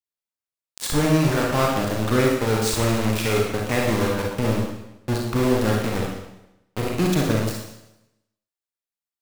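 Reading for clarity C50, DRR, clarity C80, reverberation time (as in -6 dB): 1.5 dB, -1.5 dB, 5.0 dB, 0.90 s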